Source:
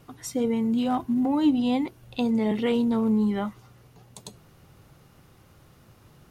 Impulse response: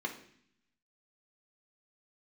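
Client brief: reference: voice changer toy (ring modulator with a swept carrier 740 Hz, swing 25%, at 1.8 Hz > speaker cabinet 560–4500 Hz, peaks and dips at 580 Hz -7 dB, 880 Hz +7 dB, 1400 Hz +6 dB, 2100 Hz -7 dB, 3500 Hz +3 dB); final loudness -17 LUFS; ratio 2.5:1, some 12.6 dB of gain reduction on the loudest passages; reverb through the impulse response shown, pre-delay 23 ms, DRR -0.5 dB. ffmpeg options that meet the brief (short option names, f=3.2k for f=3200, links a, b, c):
-filter_complex "[0:a]acompressor=threshold=-36dB:ratio=2.5,asplit=2[a][b];[1:a]atrim=start_sample=2205,adelay=23[c];[b][c]afir=irnorm=-1:irlink=0,volume=-3dB[d];[a][d]amix=inputs=2:normalize=0,aeval=exprs='val(0)*sin(2*PI*740*n/s+740*0.25/1.8*sin(2*PI*1.8*n/s))':c=same,highpass=560,equalizer=f=580:t=q:w=4:g=-7,equalizer=f=880:t=q:w=4:g=7,equalizer=f=1.4k:t=q:w=4:g=6,equalizer=f=2.1k:t=q:w=4:g=-7,equalizer=f=3.5k:t=q:w=4:g=3,lowpass=f=4.5k:w=0.5412,lowpass=f=4.5k:w=1.3066,volume=13.5dB"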